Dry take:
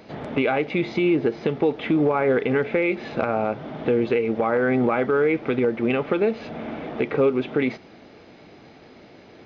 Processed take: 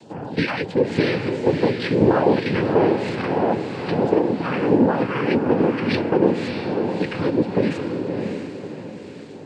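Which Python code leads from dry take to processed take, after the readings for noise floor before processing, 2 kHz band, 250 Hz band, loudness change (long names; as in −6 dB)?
−48 dBFS, 0.0 dB, +3.5 dB, +2.0 dB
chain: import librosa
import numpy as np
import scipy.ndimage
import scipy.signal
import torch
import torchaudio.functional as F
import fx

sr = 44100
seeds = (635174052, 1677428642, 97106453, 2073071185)

y = fx.phaser_stages(x, sr, stages=2, low_hz=490.0, high_hz=2900.0, hz=1.5, feedback_pct=25)
y = fx.noise_vocoder(y, sr, seeds[0], bands=8)
y = fx.echo_diffused(y, sr, ms=612, feedback_pct=42, wet_db=-4.5)
y = y * 10.0 ** (4.0 / 20.0)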